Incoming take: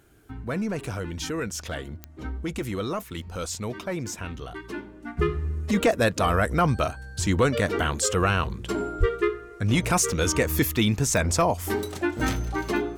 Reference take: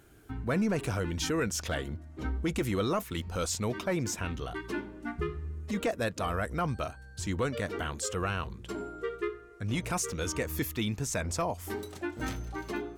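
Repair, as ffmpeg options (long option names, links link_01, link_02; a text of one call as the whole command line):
ffmpeg -i in.wav -filter_complex "[0:a]adeclick=threshold=4,asplit=3[link_01][link_02][link_03];[link_01]afade=type=out:start_time=8.99:duration=0.02[link_04];[link_02]highpass=frequency=140:width=0.5412,highpass=frequency=140:width=1.3066,afade=type=in:start_time=8.99:duration=0.02,afade=type=out:start_time=9.11:duration=0.02[link_05];[link_03]afade=type=in:start_time=9.11:duration=0.02[link_06];[link_04][link_05][link_06]amix=inputs=3:normalize=0,asetnsamples=nb_out_samples=441:pad=0,asendcmd='5.17 volume volume -9.5dB',volume=0dB" out.wav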